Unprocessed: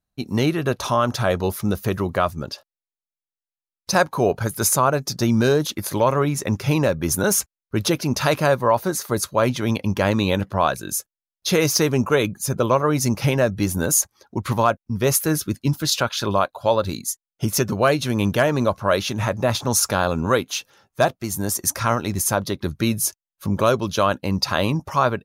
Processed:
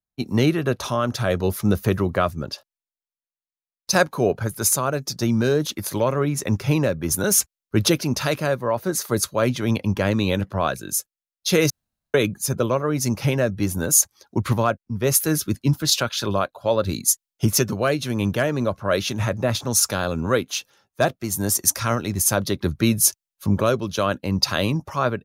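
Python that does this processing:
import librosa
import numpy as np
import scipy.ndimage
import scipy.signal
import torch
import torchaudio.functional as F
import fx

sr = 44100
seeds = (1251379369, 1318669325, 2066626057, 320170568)

y = fx.edit(x, sr, fx.room_tone_fill(start_s=11.7, length_s=0.44), tone=tone)
y = fx.rider(y, sr, range_db=10, speed_s=0.5)
y = fx.dynamic_eq(y, sr, hz=910.0, q=1.6, threshold_db=-32.0, ratio=4.0, max_db=-7)
y = fx.band_widen(y, sr, depth_pct=40)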